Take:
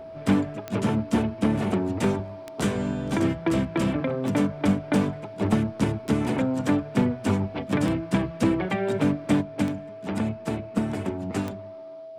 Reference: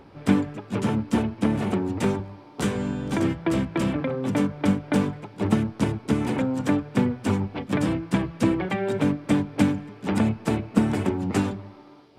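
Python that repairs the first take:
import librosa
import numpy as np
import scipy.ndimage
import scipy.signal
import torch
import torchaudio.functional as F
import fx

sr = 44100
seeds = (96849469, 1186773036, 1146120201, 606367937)

y = fx.fix_declip(x, sr, threshold_db=-13.5)
y = fx.fix_declick_ar(y, sr, threshold=10.0)
y = fx.notch(y, sr, hz=650.0, q=30.0)
y = fx.gain(y, sr, db=fx.steps((0.0, 0.0), (9.41, 5.0)))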